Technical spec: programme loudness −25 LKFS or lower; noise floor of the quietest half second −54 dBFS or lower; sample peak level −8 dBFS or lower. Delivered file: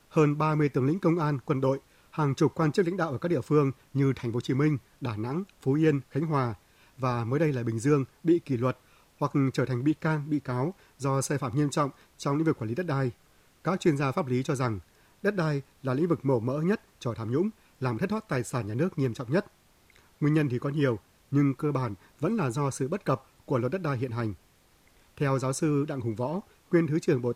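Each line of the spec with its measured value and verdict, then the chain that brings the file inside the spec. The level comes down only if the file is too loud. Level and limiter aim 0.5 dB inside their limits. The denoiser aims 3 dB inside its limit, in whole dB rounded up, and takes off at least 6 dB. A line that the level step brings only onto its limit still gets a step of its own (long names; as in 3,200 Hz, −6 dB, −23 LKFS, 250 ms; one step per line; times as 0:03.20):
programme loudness −28.5 LKFS: in spec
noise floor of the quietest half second −62 dBFS: in spec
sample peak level −12.0 dBFS: in spec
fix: no processing needed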